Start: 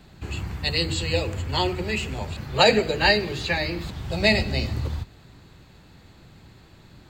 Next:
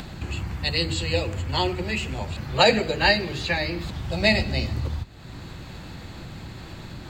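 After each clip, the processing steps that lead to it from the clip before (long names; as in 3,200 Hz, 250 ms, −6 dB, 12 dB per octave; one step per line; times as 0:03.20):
high-shelf EQ 10,000 Hz −4 dB
notch filter 420 Hz, Q 12
upward compression, threshold −26 dBFS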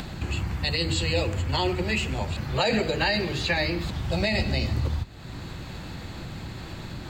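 brickwall limiter −16 dBFS, peak gain reduction 10.5 dB
level +1.5 dB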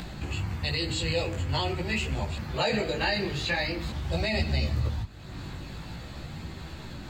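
multi-voice chorus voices 2, 0.46 Hz, delay 17 ms, depth 4.7 ms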